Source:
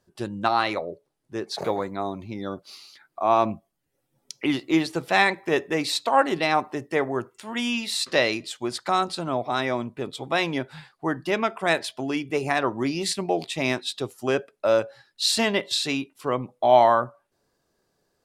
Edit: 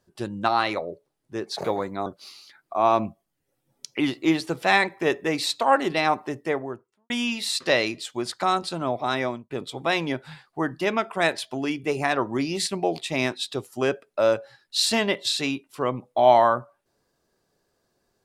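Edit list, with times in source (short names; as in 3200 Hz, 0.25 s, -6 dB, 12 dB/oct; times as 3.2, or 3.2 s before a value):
2.06–2.52 cut
6.76–7.56 studio fade out
9.7–9.96 fade out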